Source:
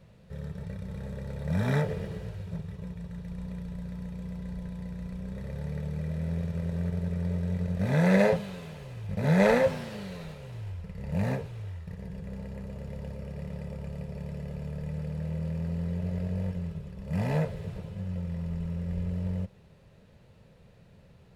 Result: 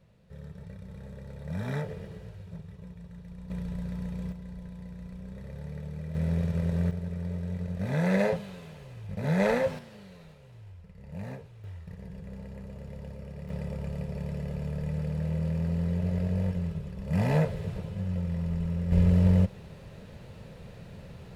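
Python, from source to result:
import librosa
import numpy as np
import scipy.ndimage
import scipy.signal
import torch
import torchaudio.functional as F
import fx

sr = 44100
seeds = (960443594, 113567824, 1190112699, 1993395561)

y = fx.gain(x, sr, db=fx.steps((0.0, -6.0), (3.5, 3.0), (4.32, -4.5), (6.15, 3.5), (6.91, -3.5), (9.79, -10.0), (11.64, -3.0), (13.49, 3.0), (18.92, 10.5)))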